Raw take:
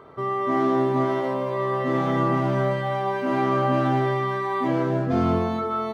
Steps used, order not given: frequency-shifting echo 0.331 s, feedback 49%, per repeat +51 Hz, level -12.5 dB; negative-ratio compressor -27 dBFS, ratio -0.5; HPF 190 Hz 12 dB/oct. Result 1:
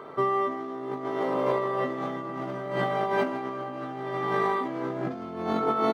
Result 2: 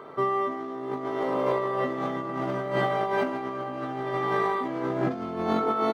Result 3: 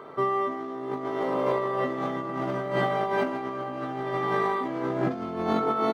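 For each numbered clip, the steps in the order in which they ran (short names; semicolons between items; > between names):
frequency-shifting echo > negative-ratio compressor > HPF; HPF > frequency-shifting echo > negative-ratio compressor; frequency-shifting echo > HPF > negative-ratio compressor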